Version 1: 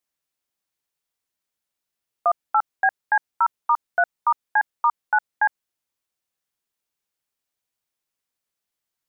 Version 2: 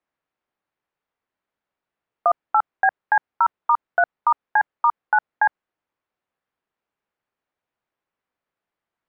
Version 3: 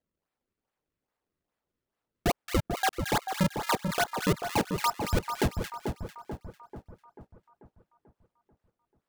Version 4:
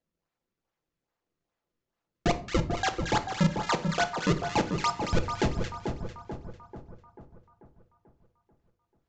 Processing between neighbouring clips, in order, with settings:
low-pass filter 1,700 Hz 12 dB per octave; low-shelf EQ 160 Hz −6.5 dB; in parallel at +3 dB: compressor whose output falls as the input rises −23 dBFS, ratio −1; on the sum: level −2.5 dB
sample-and-hold swept by an LFO 33×, swing 160% 2.4 Hz; brickwall limiter −17 dBFS, peak gain reduction 10 dB; echo with a time of its own for lows and highs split 1,300 Hz, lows 439 ms, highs 224 ms, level −6 dB; level −1.5 dB
rectangular room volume 490 cubic metres, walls furnished, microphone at 0.77 metres; downsampling to 16,000 Hz

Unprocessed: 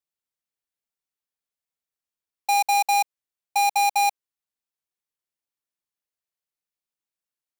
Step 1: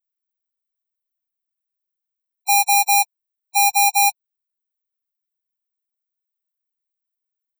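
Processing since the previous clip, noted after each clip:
RIAA equalisation recording
spectral peaks only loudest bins 16
level +3.5 dB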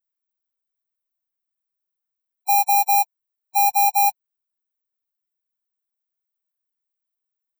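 flat-topped bell 4,800 Hz −9 dB 2.6 octaves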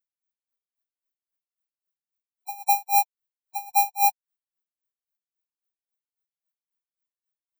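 tremolo with a sine in dB 3.7 Hz, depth 27 dB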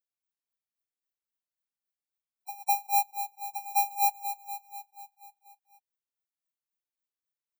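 repeating echo 242 ms, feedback 60%, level −10 dB
level −5.5 dB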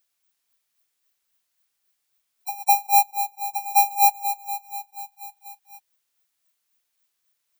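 one half of a high-frequency compander encoder only
level +8.5 dB

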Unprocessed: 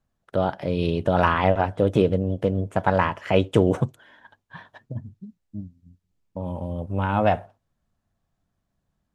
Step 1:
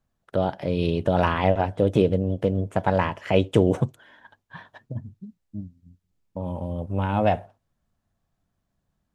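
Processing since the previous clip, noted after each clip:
dynamic equaliser 1,300 Hz, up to −6 dB, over −36 dBFS, Q 1.6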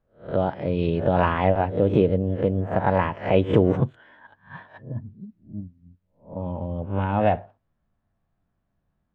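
peak hold with a rise ahead of every peak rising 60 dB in 0.33 s
low-pass filter 2,400 Hz 12 dB per octave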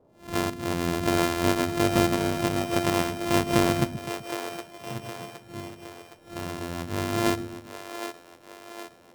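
samples sorted by size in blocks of 128 samples
noise in a band 75–720 Hz −56 dBFS
echo with a time of its own for lows and highs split 340 Hz, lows 127 ms, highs 765 ms, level −8.5 dB
level −4.5 dB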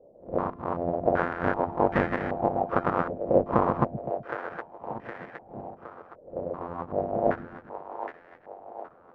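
hollow resonant body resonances 510/740 Hz, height 6 dB, ringing for 25 ms
harmonic and percussive parts rebalanced harmonic −17 dB
low-pass on a step sequencer 2.6 Hz 560–1,800 Hz
level +1.5 dB

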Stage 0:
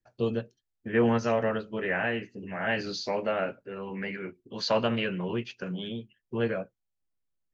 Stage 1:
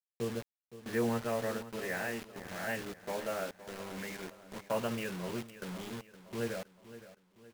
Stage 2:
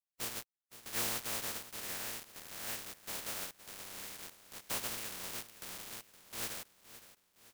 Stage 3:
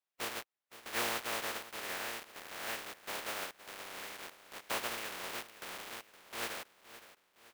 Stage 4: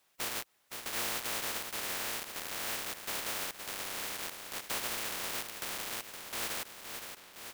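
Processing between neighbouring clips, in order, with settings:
low-pass filter 2,700 Hz 24 dB per octave; bit reduction 6 bits; repeating echo 516 ms, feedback 46%, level −15 dB; level −8 dB
compressing power law on the bin magnitudes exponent 0.21; level −4.5 dB
bass and treble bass −12 dB, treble −11 dB; level +6.5 dB
in parallel at 0 dB: brickwall limiter −31.5 dBFS, peak gain reduction 10 dB; on the sum: every bin compressed towards the loudest bin 2 to 1; level −3.5 dB

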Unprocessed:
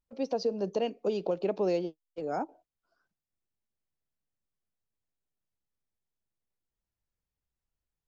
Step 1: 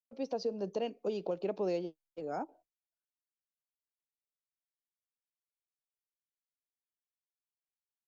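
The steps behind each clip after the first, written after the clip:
downward expander −58 dBFS
level −5 dB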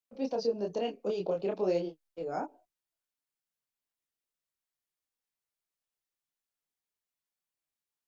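multi-voice chorus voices 4, 0.96 Hz, delay 26 ms, depth 4.3 ms
level +6 dB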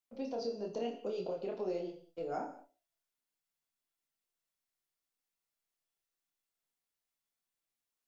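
downward compressor, threshold −35 dBFS, peak gain reduction 10.5 dB
tuned comb filter 680 Hz, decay 0.36 s, mix 70%
reverb whose tail is shaped and stops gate 230 ms falling, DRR 5 dB
level +9 dB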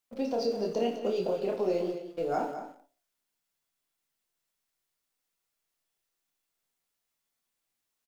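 in parallel at −11 dB: centre clipping without the shift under −46 dBFS
on the sum: single-tap delay 209 ms −10 dB
level +6 dB

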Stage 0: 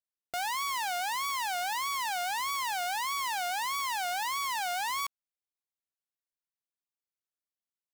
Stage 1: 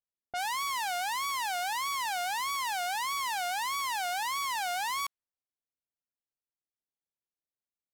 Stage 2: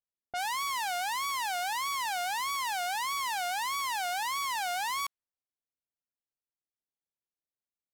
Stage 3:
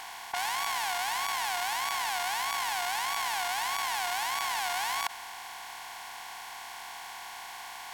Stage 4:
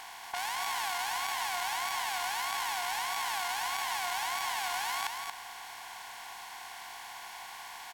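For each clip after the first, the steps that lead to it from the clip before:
low-pass that shuts in the quiet parts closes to 660 Hz, open at −30 dBFS
no processing that can be heard
compressor on every frequency bin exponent 0.2; level −4 dB
single-tap delay 230 ms −5 dB; level −3.5 dB

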